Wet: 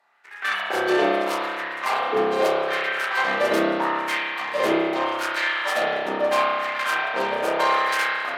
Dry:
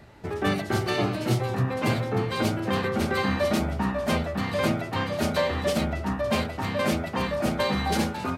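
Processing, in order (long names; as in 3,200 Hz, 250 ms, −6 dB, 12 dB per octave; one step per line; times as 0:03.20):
harmonic generator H 7 −19 dB, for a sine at −12 dBFS
auto-filter high-pass sine 0.79 Hz 400–1,800 Hz
spring reverb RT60 1.9 s, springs 30 ms, chirp 80 ms, DRR −6 dB
level −1.5 dB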